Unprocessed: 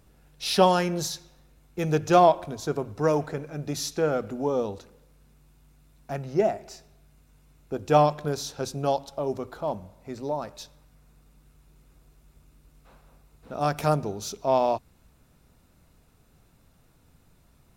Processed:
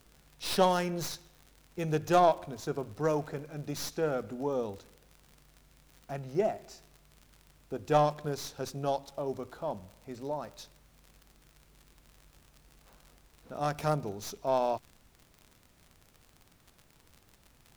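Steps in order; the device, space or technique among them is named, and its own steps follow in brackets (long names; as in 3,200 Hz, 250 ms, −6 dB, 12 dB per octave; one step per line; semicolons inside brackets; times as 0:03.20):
record under a worn stylus (stylus tracing distortion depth 0.08 ms; surface crackle 63 per second −36 dBFS; pink noise bed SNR 32 dB)
level −6 dB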